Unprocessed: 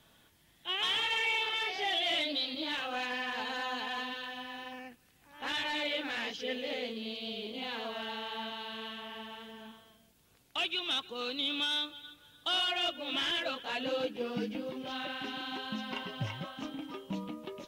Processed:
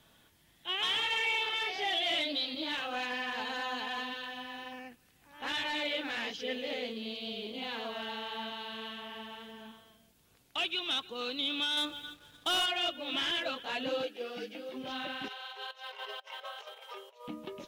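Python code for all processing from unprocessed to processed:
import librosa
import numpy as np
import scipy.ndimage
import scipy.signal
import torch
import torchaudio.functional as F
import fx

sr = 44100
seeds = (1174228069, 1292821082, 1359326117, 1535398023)

y = fx.chain(x, sr, fx.high_shelf(hz=3100.0, db=-6.0),
    fx.leveller(passes=2), at=(11.77, 12.66))
y = fx.chain(y, sr, fx.highpass(hz=450.0, slope=12),
    fx.peak_eq(hz=1000.0, db=-12.5, octaves=0.26), at=(14.03, 14.74))
y = fx.chain(y, sr, fx.over_compress(threshold_db=-42.0, ratio=-0.5),
    fx.brickwall_highpass(low_hz=390.0), at=(15.28, 17.28))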